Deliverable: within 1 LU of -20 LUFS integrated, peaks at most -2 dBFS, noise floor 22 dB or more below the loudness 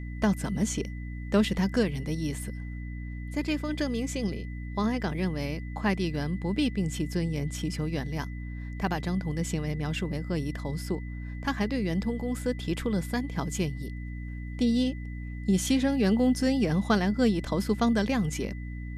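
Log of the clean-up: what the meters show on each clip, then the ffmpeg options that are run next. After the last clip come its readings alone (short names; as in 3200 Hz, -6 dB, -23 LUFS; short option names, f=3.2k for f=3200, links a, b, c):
hum 60 Hz; harmonics up to 300 Hz; hum level -34 dBFS; steady tone 2000 Hz; tone level -49 dBFS; loudness -29.5 LUFS; peak -11.5 dBFS; loudness target -20.0 LUFS
-> -af "bandreject=f=60:t=h:w=6,bandreject=f=120:t=h:w=6,bandreject=f=180:t=h:w=6,bandreject=f=240:t=h:w=6,bandreject=f=300:t=h:w=6"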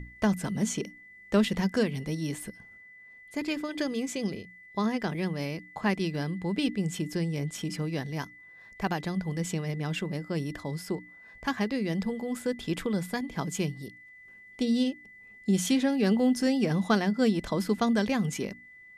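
hum none; steady tone 2000 Hz; tone level -49 dBFS
-> -af "bandreject=f=2k:w=30"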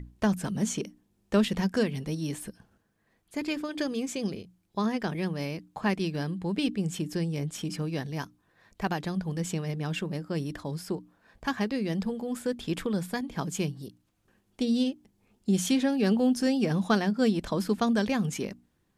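steady tone none; loudness -30.0 LUFS; peak -12.5 dBFS; loudness target -20.0 LUFS
-> -af "volume=10dB"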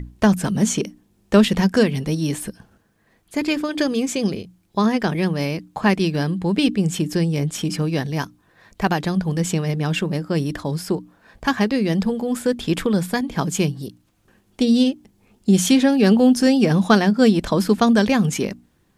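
loudness -20.0 LUFS; peak -2.5 dBFS; noise floor -62 dBFS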